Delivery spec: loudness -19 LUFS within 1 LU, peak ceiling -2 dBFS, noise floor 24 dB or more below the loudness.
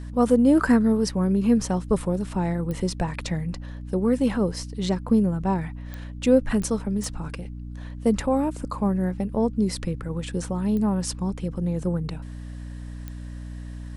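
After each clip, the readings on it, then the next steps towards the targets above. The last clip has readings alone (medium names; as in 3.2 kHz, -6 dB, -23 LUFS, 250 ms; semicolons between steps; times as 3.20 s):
clicks found 6; hum 60 Hz; highest harmonic 300 Hz; hum level -34 dBFS; loudness -24.5 LUFS; peak level -7.0 dBFS; loudness target -19.0 LUFS
-> de-click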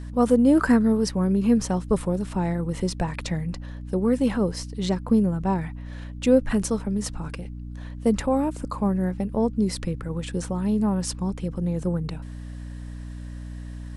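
clicks found 0; hum 60 Hz; highest harmonic 300 Hz; hum level -34 dBFS
-> hum notches 60/120/180/240/300 Hz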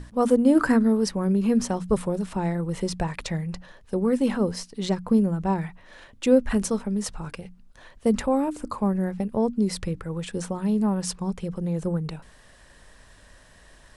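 hum not found; loudness -25.0 LUFS; peak level -7.0 dBFS; loudness target -19.0 LUFS
-> trim +6 dB; peak limiter -2 dBFS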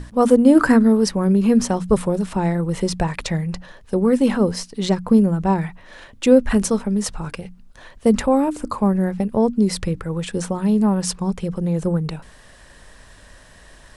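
loudness -19.0 LUFS; peak level -2.0 dBFS; noise floor -47 dBFS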